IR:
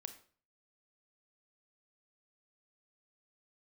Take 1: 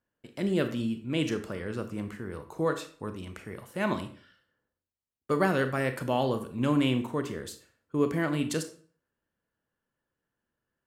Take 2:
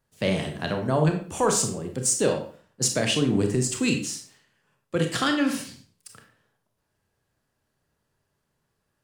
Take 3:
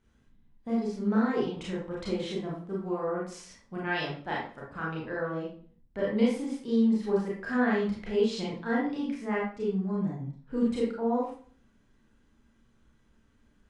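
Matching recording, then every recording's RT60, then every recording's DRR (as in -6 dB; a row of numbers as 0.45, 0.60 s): 1; 0.45, 0.45, 0.45 s; 8.5, 4.0, -5.5 dB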